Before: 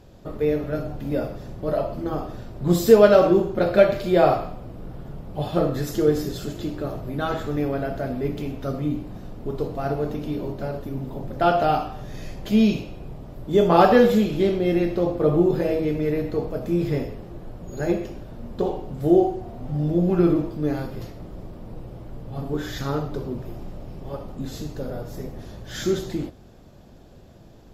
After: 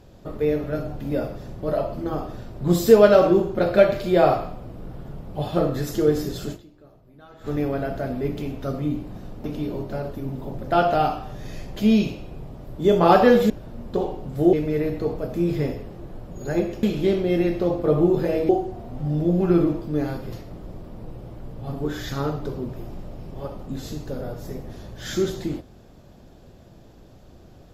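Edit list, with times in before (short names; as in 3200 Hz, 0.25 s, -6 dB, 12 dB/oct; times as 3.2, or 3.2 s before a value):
6.54–7.48 dip -22 dB, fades 0.33 s exponential
9.44–10.13 cut
14.19–15.85 swap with 18.15–19.18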